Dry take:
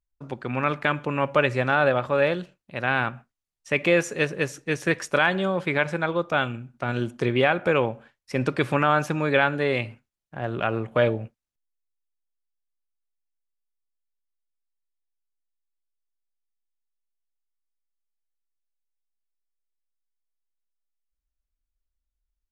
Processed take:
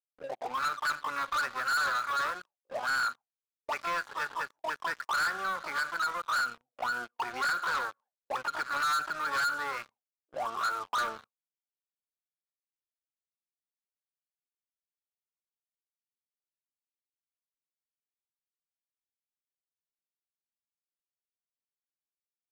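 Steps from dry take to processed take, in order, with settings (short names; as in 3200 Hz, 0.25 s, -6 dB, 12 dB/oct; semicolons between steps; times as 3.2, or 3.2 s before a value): harmoniser +12 st -3 dB; auto-wah 430–1400 Hz, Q 13, up, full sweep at -20.5 dBFS; sample leveller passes 5; gain -7.5 dB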